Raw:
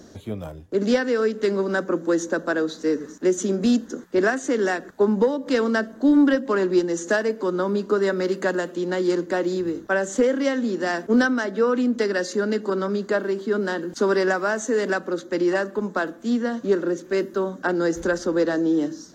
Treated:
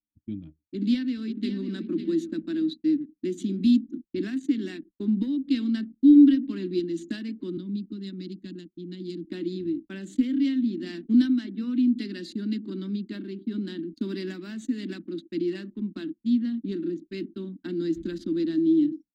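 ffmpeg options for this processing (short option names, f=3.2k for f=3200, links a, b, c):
-filter_complex "[0:a]asplit=2[a][b];[b]afade=t=in:st=0.61:d=0.01,afade=t=out:st=1.6:d=0.01,aecho=0:1:550|1100|1650|2200:0.354813|0.124185|0.0434646|0.0152126[c];[a][c]amix=inputs=2:normalize=0,asettb=1/sr,asplit=3[d][e][f];[d]atrim=end=7.574[g];[e]atrim=start=7.57:end=9.25,asetpts=PTS-STARTPTS,afade=t=in:d=0.004:c=qsin,afade=t=out:st=1.676:d=0.004:c=qsin,acrossover=split=260|3000[h][i][j];[i]acompressor=threshold=-53dB:ratio=1.5:attack=3.2:release=140:knee=2.83:detection=peak[k];[h][k][j]amix=inputs=3:normalize=0[l];[f]atrim=start=9.246[m];[g][l]acrossfade=d=0.004:c1=hsin:c2=qsin[n];[n][m]acrossfade=d=0.004:c1=qsin:c2=hsin,agate=range=-33dB:threshold=-29dB:ratio=3:detection=peak,anlmdn=2.51,firequalizer=gain_entry='entry(100,0);entry(310,11);entry(450,-24);entry(800,-24);entry(1500,-16);entry(2300,0);entry(4000,6);entry(5900,-14);entry(9700,2)':delay=0.05:min_phase=1,volume=-7.5dB"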